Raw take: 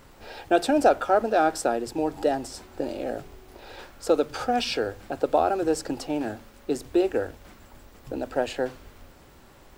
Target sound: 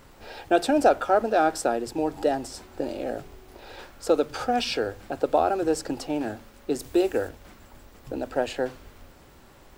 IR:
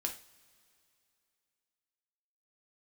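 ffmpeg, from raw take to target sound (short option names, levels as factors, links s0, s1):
-filter_complex "[0:a]asettb=1/sr,asplit=3[s0][s1][s2];[s0]atrim=end=6.794[s3];[s1]atrim=start=6.79:end=7.29,asetpts=PTS-STARTPTS,afade=t=in:d=0.004:c=qsin,afade=t=out:st=0.496:d=0.004:c=qsin,highshelf=f=5300:g=9[s4];[s2]atrim=start=7.286[s5];[s3][s4]acrossfade=d=0.004:c1=hsin:c2=qsin[s6];[s6][s5]acrossfade=d=0.004:c1=qsin:c2=hsin"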